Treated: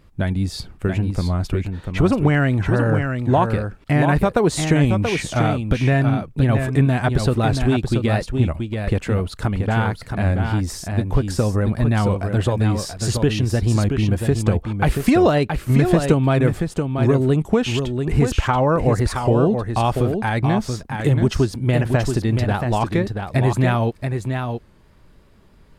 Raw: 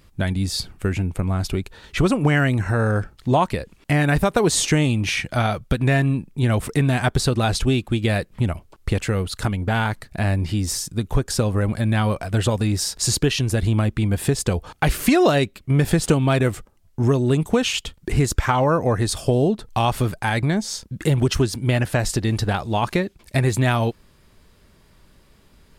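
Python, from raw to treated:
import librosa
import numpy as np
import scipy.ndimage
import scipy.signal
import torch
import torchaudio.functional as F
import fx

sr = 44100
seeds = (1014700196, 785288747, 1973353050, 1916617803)

y = fx.high_shelf(x, sr, hz=2600.0, db=-10.0)
y = y + 10.0 ** (-6.0 / 20.0) * np.pad(y, (int(681 * sr / 1000.0), 0))[:len(y)]
y = fx.record_warp(y, sr, rpm=33.33, depth_cents=100.0)
y = F.gain(torch.from_numpy(y), 1.5).numpy()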